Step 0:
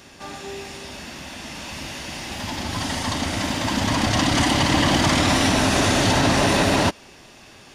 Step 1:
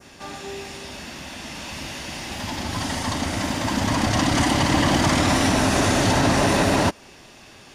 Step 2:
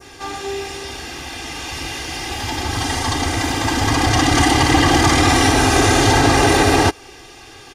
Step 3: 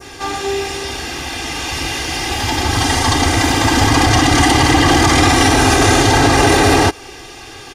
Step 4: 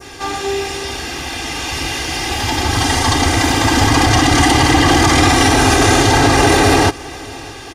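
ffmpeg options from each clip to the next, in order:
-af "adynamicequalizer=threshold=0.0178:dfrequency=3400:dqfactor=1.1:tfrequency=3400:tqfactor=1.1:attack=5:release=100:ratio=0.375:range=2:mode=cutabove:tftype=bell"
-af "aecho=1:1:2.5:0.82,volume=4dB"
-af "alimiter=level_in=7dB:limit=-1dB:release=50:level=0:latency=1,volume=-1dB"
-af "aecho=1:1:612|1224|1836|2448:0.0794|0.0437|0.024|0.0132"

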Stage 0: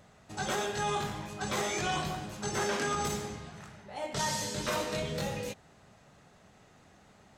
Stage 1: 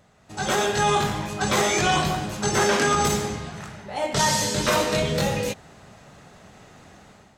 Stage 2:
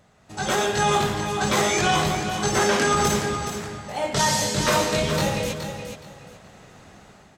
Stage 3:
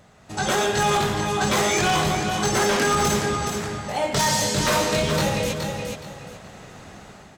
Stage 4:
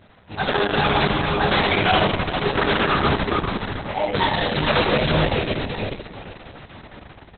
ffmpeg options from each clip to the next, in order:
-af "dynaudnorm=f=170:g=5:m=11dB"
-af "aecho=1:1:421|842|1263:0.376|0.0864|0.0199"
-filter_complex "[0:a]asplit=2[a][b];[b]acompressor=threshold=-30dB:ratio=6,volume=1.5dB[c];[a][c]amix=inputs=2:normalize=0,aeval=exprs='0.237*(abs(mod(val(0)/0.237+3,4)-2)-1)':c=same,volume=-1.5dB"
-filter_complex "[0:a]flanger=delay=9.3:depth=5:regen=44:speed=0.51:shape=triangular,asplit=9[a][b][c][d][e][f][g][h][i];[b]adelay=81,afreqshift=-110,volume=-7dB[j];[c]adelay=162,afreqshift=-220,volume=-11.3dB[k];[d]adelay=243,afreqshift=-330,volume=-15.6dB[l];[e]adelay=324,afreqshift=-440,volume=-19.9dB[m];[f]adelay=405,afreqshift=-550,volume=-24.2dB[n];[g]adelay=486,afreqshift=-660,volume=-28.5dB[o];[h]adelay=567,afreqshift=-770,volume=-32.8dB[p];[i]adelay=648,afreqshift=-880,volume=-37.1dB[q];[a][j][k][l][m][n][o][p][q]amix=inputs=9:normalize=0,volume=5.5dB" -ar 48000 -c:a libopus -b:a 6k

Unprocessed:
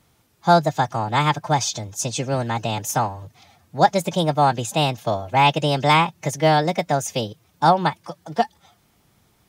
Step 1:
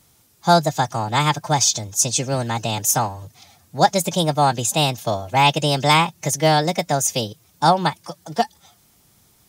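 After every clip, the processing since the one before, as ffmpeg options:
-af "bass=f=250:g=1,treble=f=4k:g=10"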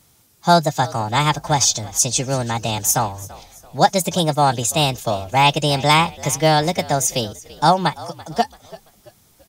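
-filter_complex "[0:a]asplit=4[a][b][c][d];[b]adelay=336,afreqshift=-54,volume=-19.5dB[e];[c]adelay=672,afreqshift=-108,volume=-27.2dB[f];[d]adelay=1008,afreqshift=-162,volume=-35dB[g];[a][e][f][g]amix=inputs=4:normalize=0,volume=1dB"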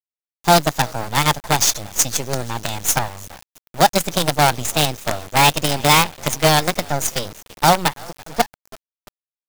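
-af "acrusher=bits=3:dc=4:mix=0:aa=0.000001"

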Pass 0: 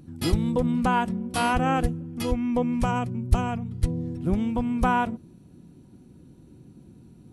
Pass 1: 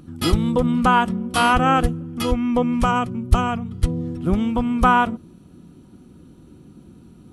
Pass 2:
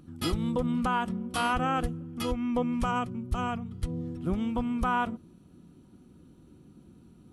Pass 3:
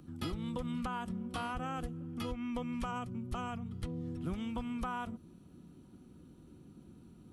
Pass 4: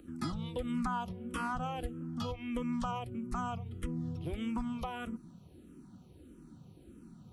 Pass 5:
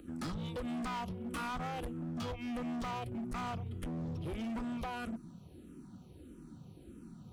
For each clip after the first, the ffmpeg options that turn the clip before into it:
-af "equalizer=f=125:t=o:w=0.33:g=-7,equalizer=f=1.25k:t=o:w=0.33:g=9,equalizer=f=3.15k:t=o:w=0.33:g=5,volume=5dB"
-af "alimiter=limit=-10dB:level=0:latency=1:release=99,volume=-8.5dB"
-filter_complex "[0:a]acrossover=split=140|1300|4600[a][b][c][d];[a]acompressor=threshold=-38dB:ratio=4[e];[b]acompressor=threshold=-38dB:ratio=4[f];[c]acompressor=threshold=-46dB:ratio=4[g];[d]acompressor=threshold=-57dB:ratio=4[h];[e][f][g][h]amix=inputs=4:normalize=0,volume=-1.5dB"
-filter_complex "[0:a]asplit=2[a][b];[b]afreqshift=-1.6[c];[a][c]amix=inputs=2:normalize=1,volume=4.5dB"
-af "asoftclip=type=hard:threshold=-38dB,volume=2dB"

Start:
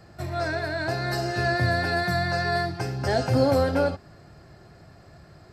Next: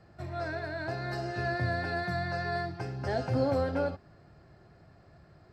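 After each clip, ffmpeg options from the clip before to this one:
-af "aemphasis=mode=reproduction:type=50fm,volume=-7.5dB"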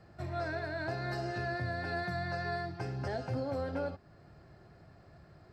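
-af "alimiter=level_in=2.5dB:limit=-24dB:level=0:latency=1:release=429,volume=-2.5dB"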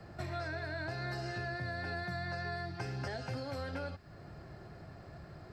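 -filter_complex "[0:a]acrossover=split=150|1400[a][b][c];[a]acompressor=threshold=-50dB:ratio=4[d];[b]acompressor=threshold=-50dB:ratio=4[e];[c]acompressor=threshold=-51dB:ratio=4[f];[d][e][f]amix=inputs=3:normalize=0,volume=6.5dB"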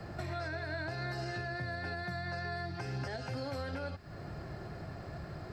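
-af "alimiter=level_in=12dB:limit=-24dB:level=0:latency=1:release=278,volume=-12dB,volume=6.5dB"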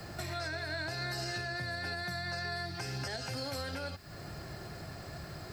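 -af "crystalizer=i=4.5:c=0,volume=-1.5dB"

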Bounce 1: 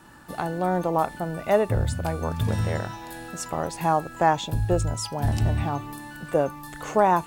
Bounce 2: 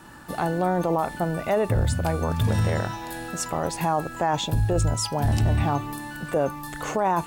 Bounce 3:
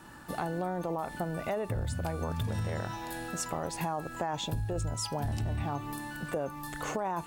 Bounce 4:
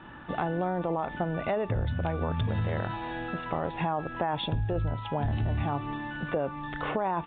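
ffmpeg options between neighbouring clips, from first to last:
-af "alimiter=limit=-18.5dB:level=0:latency=1:release=12,volume=4dB"
-af "acompressor=threshold=-25dB:ratio=6,volume=-4.5dB"
-af "aresample=8000,aresample=44100,volume=4dB"

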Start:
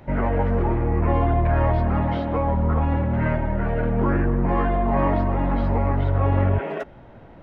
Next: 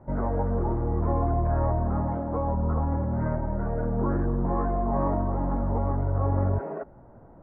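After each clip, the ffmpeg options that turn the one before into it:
-af "lowpass=f=1.3k:w=0.5412,lowpass=f=1.3k:w=1.3066,volume=-5dB"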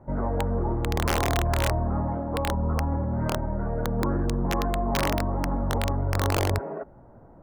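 -af "aeval=exprs='(mod(6.68*val(0)+1,2)-1)/6.68':c=same"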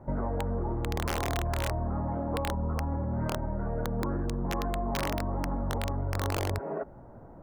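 -af "acompressor=threshold=-29dB:ratio=6,volume=1.5dB"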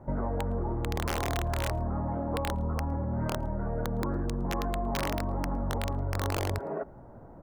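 -filter_complex "[0:a]asplit=2[a][b];[b]adelay=110.8,volume=-28dB,highshelf=f=4k:g=-2.49[c];[a][c]amix=inputs=2:normalize=0"

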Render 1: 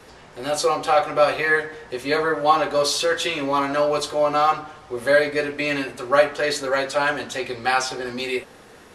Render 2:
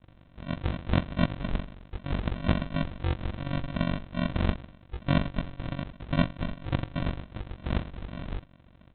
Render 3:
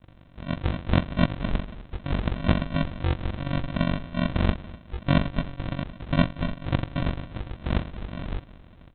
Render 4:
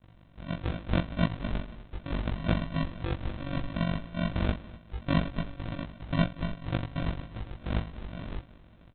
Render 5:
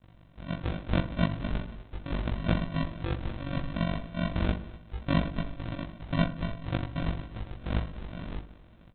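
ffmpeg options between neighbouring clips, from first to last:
-af "highpass=f=70:w=0.5412,highpass=f=70:w=1.3066,aresample=8000,acrusher=samples=19:mix=1:aa=0.000001,aresample=44100,tremolo=f=47:d=0.889,volume=-4.5dB"
-af "aecho=1:1:247|494|741|988|1235:0.0944|0.0557|0.0329|0.0194|0.0114,volume=3.5dB"
-filter_complex "[0:a]asplit=2[a][b];[b]adelay=18,volume=-3.5dB[c];[a][c]amix=inputs=2:normalize=0,volume=-6.5dB"
-filter_complex "[0:a]asplit=2[a][b];[b]adelay=61,lowpass=f=1.1k:p=1,volume=-11dB,asplit=2[c][d];[d]adelay=61,lowpass=f=1.1k:p=1,volume=0.5,asplit=2[e][f];[f]adelay=61,lowpass=f=1.1k:p=1,volume=0.5,asplit=2[g][h];[h]adelay=61,lowpass=f=1.1k:p=1,volume=0.5,asplit=2[i][j];[j]adelay=61,lowpass=f=1.1k:p=1,volume=0.5[k];[a][c][e][g][i][k]amix=inputs=6:normalize=0"

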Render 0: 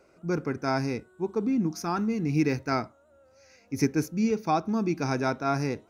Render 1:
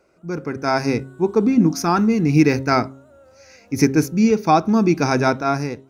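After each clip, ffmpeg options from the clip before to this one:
-af "bandreject=f=134:t=h:w=4,bandreject=f=268:t=h:w=4,bandreject=f=402:t=h:w=4,bandreject=f=536:t=h:w=4,dynaudnorm=f=180:g=7:m=12.5dB"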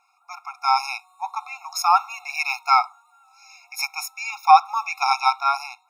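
-af "afftfilt=real='re*eq(mod(floor(b*sr/1024/710),2),1)':imag='im*eq(mod(floor(b*sr/1024/710),2),1)':win_size=1024:overlap=0.75,volume=4.5dB"

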